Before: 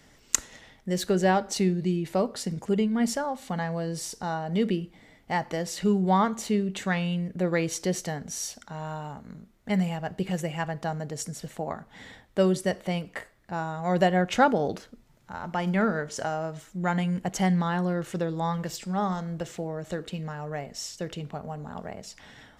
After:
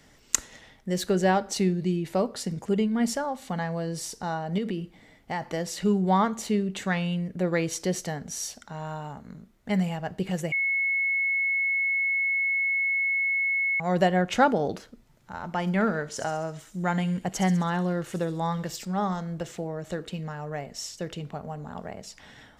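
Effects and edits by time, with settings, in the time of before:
4.58–5.5 compressor 4:1, threshold -26 dBFS
10.52–13.8 bleep 2190 Hz -22.5 dBFS
15.71–18.85 thin delay 66 ms, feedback 61%, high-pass 4300 Hz, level -7 dB

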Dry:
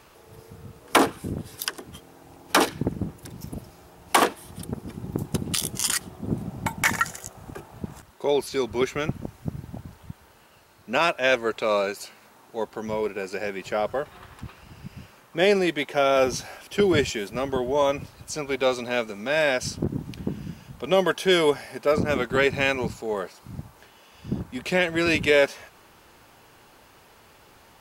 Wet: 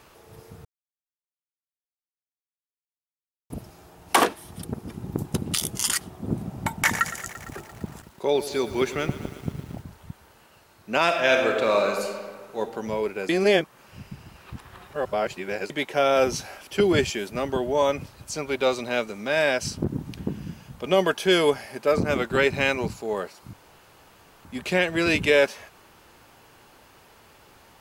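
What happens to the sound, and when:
0.65–3.5 mute
6.83–9.82 lo-fi delay 0.114 s, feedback 80%, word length 7-bit, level -14 dB
11.03–12.59 reverb throw, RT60 1.6 s, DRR 2 dB
13.29–15.7 reverse
23.53–24.45 room tone

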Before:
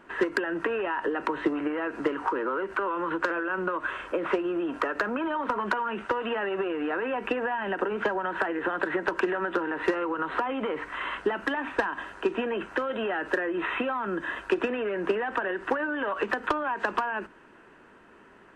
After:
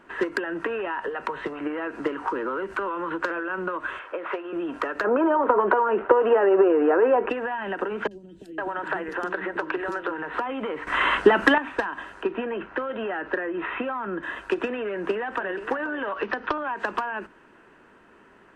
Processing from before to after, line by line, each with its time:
1.01–1.61 bell 310 Hz -14 dB 0.29 oct
2.29–2.9 tone controls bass +5 dB, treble +6 dB
3.99–4.53 three-band isolator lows -18 dB, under 410 Hz, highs -14 dB, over 3500 Hz
5.04–7.3 EQ curve 210 Hz 0 dB, 420 Hz +14 dB, 1300 Hz +5 dB, 3100 Hz -6 dB, 5500 Hz -24 dB
8.07–10.34 three bands offset in time lows, highs, mids 40/510 ms, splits 310/4400 Hz
10.87–11.58 gain +11 dB
12.23–14.23 LPF 2800 Hz
14.91–15.51 echo throw 0.48 s, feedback 10%, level -12.5 dB
16.09–16.58 steep low-pass 5900 Hz 72 dB/oct

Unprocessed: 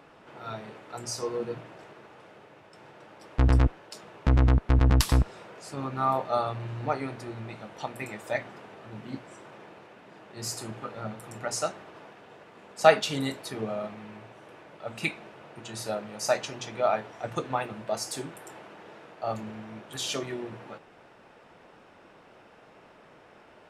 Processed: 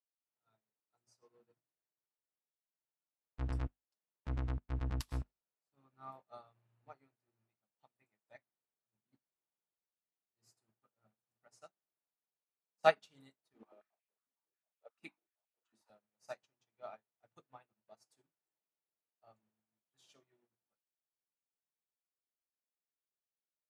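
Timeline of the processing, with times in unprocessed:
13.54–15.9 stepped high-pass 11 Hz 250–2400 Hz
whole clip: bell 470 Hz -2.5 dB 0.77 oct; notches 50/100/150/200/250/300/350 Hz; upward expander 2.5:1, over -45 dBFS; gain -7.5 dB

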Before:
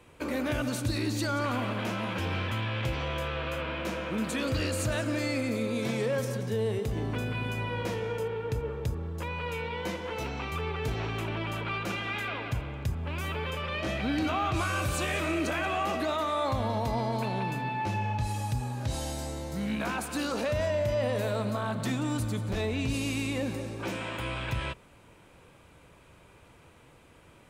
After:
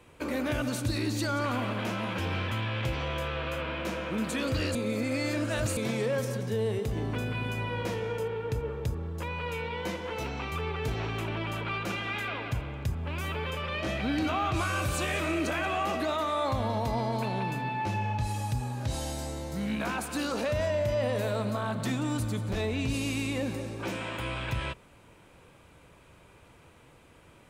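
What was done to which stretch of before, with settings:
4.75–5.77 reverse

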